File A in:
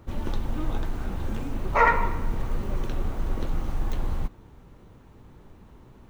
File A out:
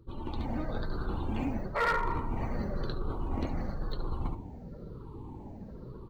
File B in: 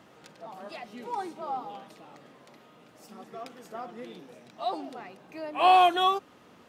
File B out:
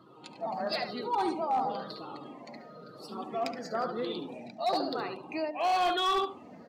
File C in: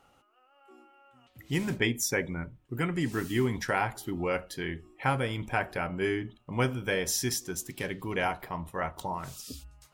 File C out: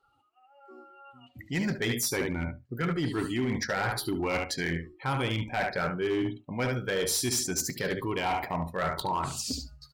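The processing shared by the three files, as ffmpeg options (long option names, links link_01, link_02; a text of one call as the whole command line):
ffmpeg -i in.wav -af "afftfilt=real='re*pow(10,7/40*sin(2*PI*(0.62*log(max(b,1)*sr/1024/100)/log(2)-(-1)*(pts-256)/sr)))':imag='im*pow(10,7/40*sin(2*PI*(0.62*log(max(b,1)*sr/1024/100)/log(2)-(-1)*(pts-256)/sr)))':win_size=1024:overlap=0.75,aecho=1:1:72|144|216:0.355|0.0674|0.0128,areverse,acompressor=threshold=-33dB:ratio=5,areverse,equalizer=frequency=4400:width=3.8:gain=9.5,afftdn=noise_reduction=18:noise_floor=-53,lowshelf=frequency=66:gain=-7,asoftclip=type=hard:threshold=-30.5dB,dynaudnorm=framelen=110:gausssize=7:maxgain=6dB,volume=1.5dB" out.wav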